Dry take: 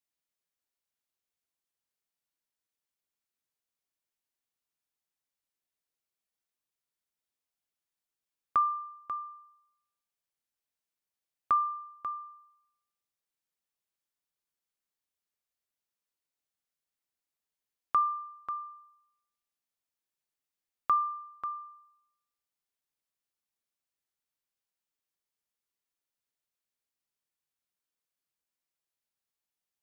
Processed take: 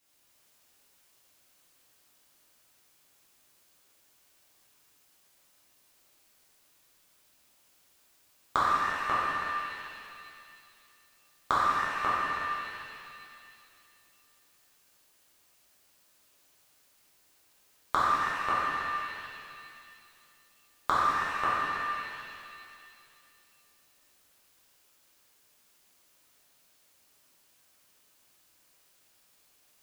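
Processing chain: in parallel at +0.5 dB: limiter -28.5 dBFS, peak gain reduction 10.5 dB; on the sum: flipped gate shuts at -33 dBFS, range -25 dB; hard clip -21.5 dBFS, distortion -16 dB; shimmer reverb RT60 2.4 s, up +7 st, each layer -8 dB, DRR -10 dB; gain +8 dB

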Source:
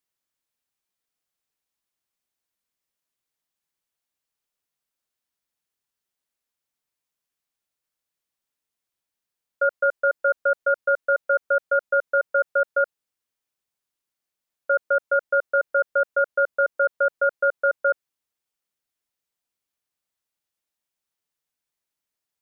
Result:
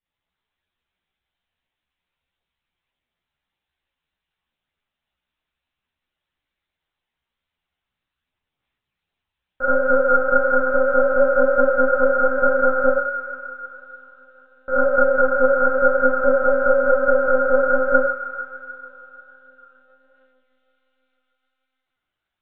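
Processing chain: thin delay 0.154 s, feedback 74%, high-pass 1400 Hz, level -4.5 dB; Schroeder reverb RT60 0.91 s, combs from 27 ms, DRR -7 dB; monotone LPC vocoder at 8 kHz 260 Hz; chorus voices 4, 1.3 Hz, delay 14 ms, depth 3 ms; gain +2.5 dB

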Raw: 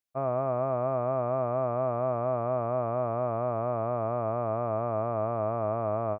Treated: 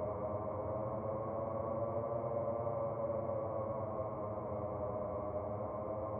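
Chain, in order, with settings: Doppler pass-by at 1.36, 33 m/s, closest 12 m; Paulstretch 20×, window 0.05 s, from 3.13; gain +4.5 dB

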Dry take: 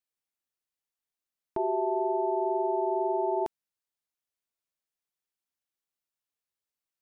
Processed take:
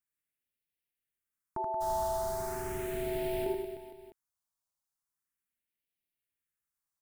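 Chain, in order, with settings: 1.8–3.44 added noise pink -42 dBFS; phaser stages 4, 0.38 Hz, lowest notch 390–1100 Hz; reverse bouncing-ball echo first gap 80 ms, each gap 1.25×, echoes 5

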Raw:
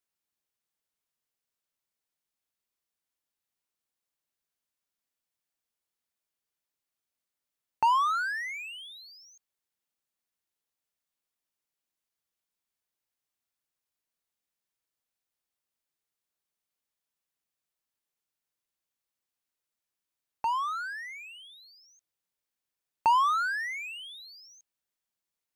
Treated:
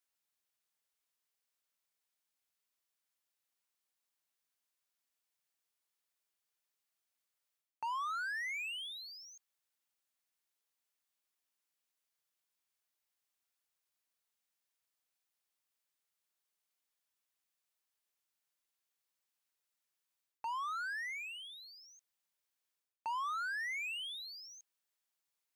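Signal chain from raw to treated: low shelf 430 Hz -10 dB; reverse; compressor 5:1, threshold -39 dBFS, peak gain reduction 16 dB; reverse; gain +1 dB

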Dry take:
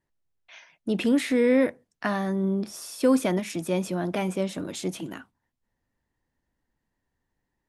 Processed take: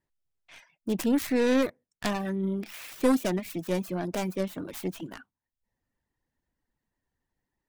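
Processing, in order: tracing distortion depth 0.5 ms; reverb removal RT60 0.56 s; 2.25–2.93 bell 2300 Hz +11 dB 0.99 oct; gain -2.5 dB

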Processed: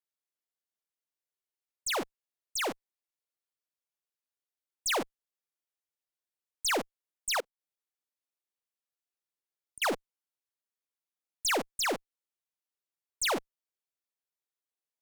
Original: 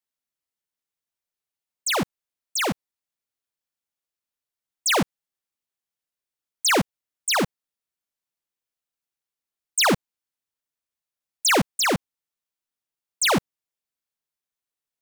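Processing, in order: resonant low shelf 240 Hz -12 dB, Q 1.5; tube stage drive 19 dB, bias 0.35; 7.4–9.82 flipped gate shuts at -27 dBFS, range -35 dB; gain -6 dB

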